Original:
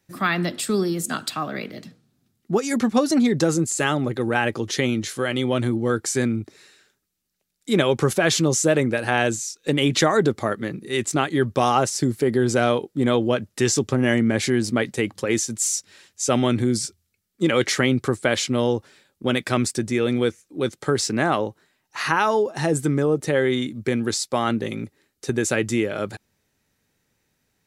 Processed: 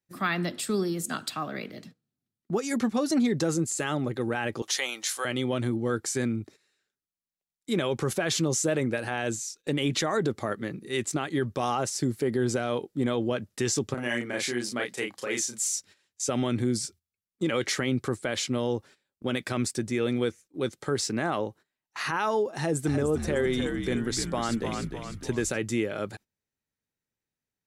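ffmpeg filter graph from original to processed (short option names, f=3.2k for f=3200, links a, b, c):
-filter_complex "[0:a]asettb=1/sr,asplit=3[a][b][c];[a]atrim=end=4.624[d];[b]atrim=start=4.62:end=5.25,asetpts=PTS-STARTPTS,afade=t=in:d=0.004:c=qsin,afade=t=out:st=0.626:d=0.004:c=qsin,highpass=f=800:t=q:w=1.8,highshelf=f=3.6k:g=10.5[e];[c]atrim=start=5.246[f];[d][e]acrossfade=d=0.004:c1=hsin:c2=qsin[g];[g][f]acrossfade=d=0.004:c1=qsin:c2=hsin,asettb=1/sr,asplit=3[h][i][j];[h]atrim=end=13.944[k];[i]atrim=start=13.94:end=15.64,asetpts=PTS-STARTPTS,afade=t=in:d=0.004:c=qsin,afade=t=out:st=1.696:d=0.004:c=qsin,highpass=f=630:p=1,asplit=2[l][m];[m]adelay=33,volume=-3dB[n];[l][n]amix=inputs=2:normalize=0,atrim=end_sample=74970[o];[j]atrim=start=15.636[p];[k][o]acrossfade=d=0.004:c1=hsin:c2=qsin[q];[q][p]acrossfade=d=0.004:c1=qsin:c2=hsin,asettb=1/sr,asplit=3[r][s][t];[r]atrim=end=22.534[u];[s]atrim=start=22.53:end=25.58,asetpts=PTS-STARTPTS,afade=t=in:d=0.004:c=qsin,afade=t=out:st=3.046:d=0.004:c=qsin,asplit=7[v][w][x][y][z][aa][ab];[w]adelay=302,afreqshift=-64,volume=-7dB[ac];[x]adelay=604,afreqshift=-128,volume=-13dB[ad];[y]adelay=906,afreqshift=-192,volume=-19dB[ae];[z]adelay=1208,afreqshift=-256,volume=-25.1dB[af];[aa]adelay=1510,afreqshift=-320,volume=-31.1dB[ag];[ab]adelay=1812,afreqshift=-384,volume=-37.1dB[ah];[v][ac][ad][ae][af][ag][ah]amix=inputs=7:normalize=0,atrim=end_sample=134505,acompressor=mode=upward:threshold=-29dB:ratio=2.5:attack=3.2:release=140:knee=2.83:detection=peak[ai];[t]atrim=start=25.576[aj];[u][ai]acrossfade=d=0.004:c1=hsin:c2=qsin[ak];[ak][aj]acrossfade=d=0.004:c1=qsin:c2=hsin,agate=range=-15dB:threshold=-42dB:ratio=16:detection=peak,alimiter=limit=-11dB:level=0:latency=1:release=40,volume=-5.5dB"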